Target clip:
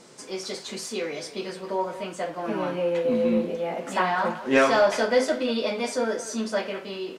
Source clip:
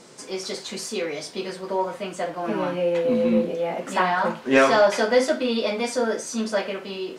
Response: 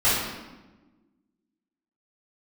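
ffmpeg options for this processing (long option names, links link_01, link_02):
-filter_complex "[0:a]asplit=2[link_01][link_02];[link_02]adelay=190,highpass=300,lowpass=3400,asoftclip=type=hard:threshold=-16.5dB,volume=-13dB[link_03];[link_01][link_03]amix=inputs=2:normalize=0,volume=-2.5dB"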